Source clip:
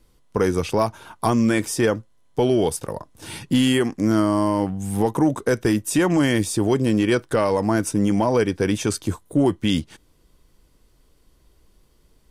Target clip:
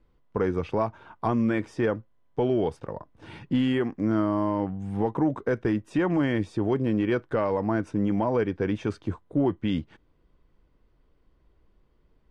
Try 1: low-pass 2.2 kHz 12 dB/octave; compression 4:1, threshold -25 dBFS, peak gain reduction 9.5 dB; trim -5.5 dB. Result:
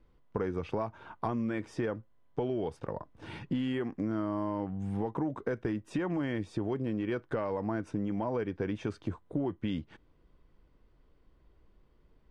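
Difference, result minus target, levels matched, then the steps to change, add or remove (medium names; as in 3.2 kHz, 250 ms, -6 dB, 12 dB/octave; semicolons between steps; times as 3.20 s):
compression: peak gain reduction +9.5 dB
remove: compression 4:1, threshold -25 dBFS, peak gain reduction 9.5 dB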